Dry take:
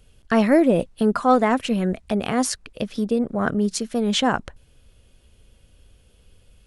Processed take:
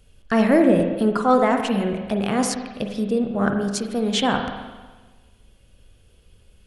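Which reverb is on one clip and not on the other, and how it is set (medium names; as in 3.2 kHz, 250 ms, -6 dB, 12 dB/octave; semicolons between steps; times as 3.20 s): spring tank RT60 1.3 s, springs 40/45/51 ms, chirp 35 ms, DRR 4 dB; trim -1 dB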